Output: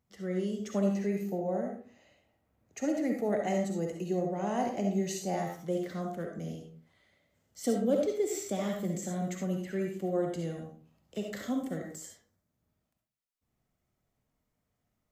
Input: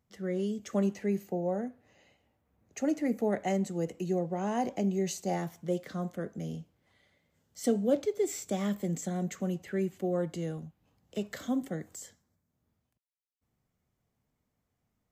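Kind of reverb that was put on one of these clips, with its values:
comb and all-pass reverb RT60 0.41 s, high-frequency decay 0.55×, pre-delay 25 ms, DRR 1.5 dB
level −2 dB

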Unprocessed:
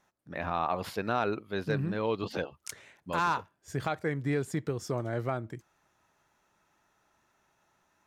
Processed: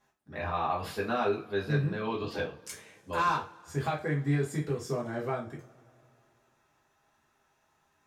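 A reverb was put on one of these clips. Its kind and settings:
coupled-rooms reverb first 0.28 s, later 2.8 s, from −28 dB, DRR −4.5 dB
level −5.5 dB

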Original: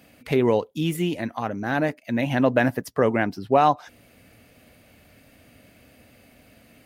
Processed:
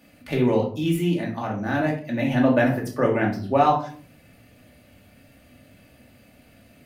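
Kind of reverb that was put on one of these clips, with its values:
rectangular room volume 420 cubic metres, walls furnished, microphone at 2.5 metres
level −4.5 dB

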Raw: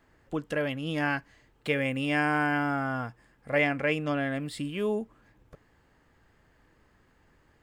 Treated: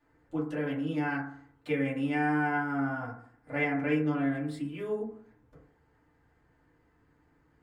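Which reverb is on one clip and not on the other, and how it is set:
feedback delay network reverb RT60 0.58 s, low-frequency decay 1.1×, high-frequency decay 0.25×, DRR −8.5 dB
level −14 dB

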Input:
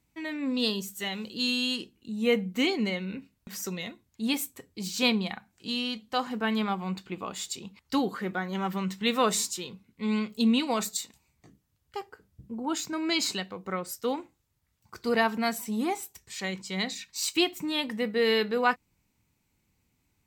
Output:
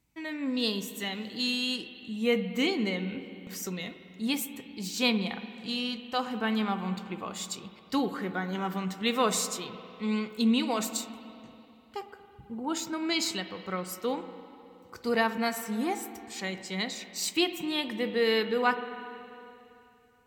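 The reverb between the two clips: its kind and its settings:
spring reverb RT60 2.9 s, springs 49/55 ms, chirp 80 ms, DRR 10 dB
level −1.5 dB

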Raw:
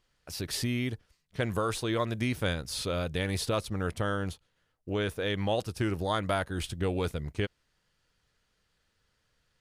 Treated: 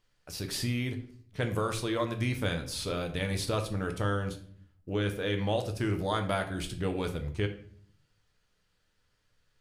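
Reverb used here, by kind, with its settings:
rectangular room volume 68 cubic metres, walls mixed, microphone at 0.41 metres
level −2 dB

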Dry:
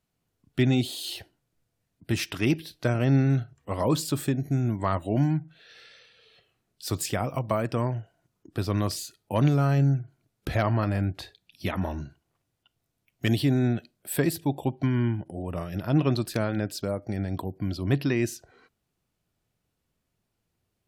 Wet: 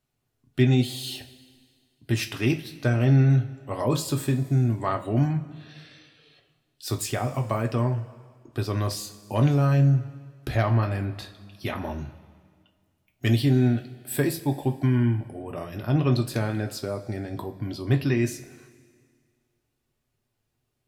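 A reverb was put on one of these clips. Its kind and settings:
coupled-rooms reverb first 0.23 s, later 1.9 s, from −18 dB, DRR 3.5 dB
level −1 dB

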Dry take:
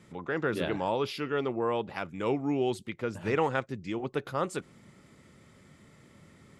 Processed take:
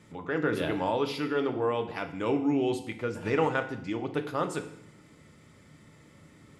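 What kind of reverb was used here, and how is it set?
feedback delay network reverb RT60 0.7 s, low-frequency decay 1.25×, high-frequency decay 1×, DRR 6 dB

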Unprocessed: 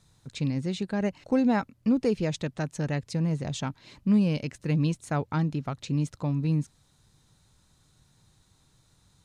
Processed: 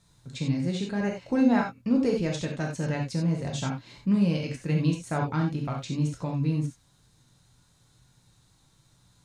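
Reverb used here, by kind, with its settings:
reverb whose tail is shaped and stops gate 110 ms flat, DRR −0.5 dB
level −2 dB

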